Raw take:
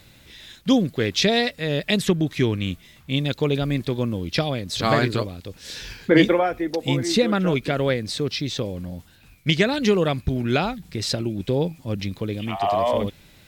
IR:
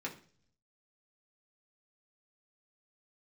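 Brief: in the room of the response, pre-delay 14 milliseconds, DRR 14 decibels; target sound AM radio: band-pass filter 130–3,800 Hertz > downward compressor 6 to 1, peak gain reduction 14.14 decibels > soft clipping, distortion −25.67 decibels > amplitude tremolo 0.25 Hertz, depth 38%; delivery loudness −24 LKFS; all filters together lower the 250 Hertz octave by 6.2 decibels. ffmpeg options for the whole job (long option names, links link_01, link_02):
-filter_complex "[0:a]equalizer=frequency=250:width_type=o:gain=-8,asplit=2[link_01][link_02];[1:a]atrim=start_sample=2205,adelay=14[link_03];[link_02][link_03]afir=irnorm=-1:irlink=0,volume=-15.5dB[link_04];[link_01][link_04]amix=inputs=2:normalize=0,highpass=130,lowpass=3800,acompressor=threshold=-29dB:ratio=6,asoftclip=threshold=-19dB,tremolo=f=0.25:d=0.38,volume=12dB"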